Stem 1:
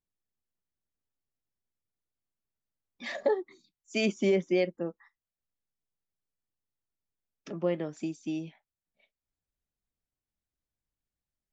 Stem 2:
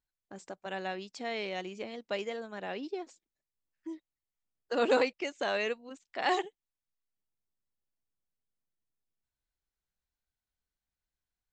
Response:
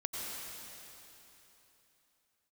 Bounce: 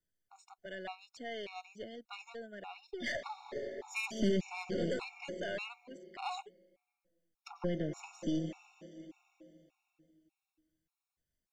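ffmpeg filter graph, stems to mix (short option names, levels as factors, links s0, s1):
-filter_complex "[0:a]volume=1.41,asplit=2[s0][s1];[s1]volume=0.376[s2];[1:a]volume=0.794[s3];[2:a]atrim=start_sample=2205[s4];[s2][s4]afir=irnorm=-1:irlink=0[s5];[s0][s3][s5]amix=inputs=3:normalize=0,acrossover=split=240|3000[s6][s7][s8];[s7]acompressor=threshold=0.0282:ratio=4[s9];[s6][s9][s8]amix=inputs=3:normalize=0,aeval=exprs='(tanh(17.8*val(0)+0.55)-tanh(0.55))/17.8':c=same,afftfilt=real='re*gt(sin(2*PI*1.7*pts/sr)*(1-2*mod(floor(b*sr/1024/720),2)),0)':imag='im*gt(sin(2*PI*1.7*pts/sr)*(1-2*mod(floor(b*sr/1024/720),2)),0)':win_size=1024:overlap=0.75"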